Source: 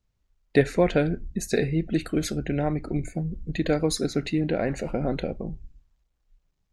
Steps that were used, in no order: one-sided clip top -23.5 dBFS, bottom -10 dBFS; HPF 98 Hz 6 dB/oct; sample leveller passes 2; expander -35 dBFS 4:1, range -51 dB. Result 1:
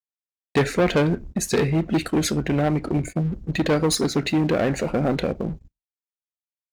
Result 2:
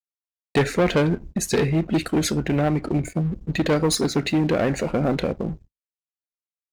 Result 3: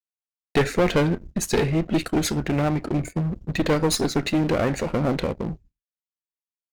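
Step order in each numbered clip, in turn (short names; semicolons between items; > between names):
one-sided clip > expander > sample leveller > HPF; one-sided clip > HPF > sample leveller > expander; expander > HPF > sample leveller > one-sided clip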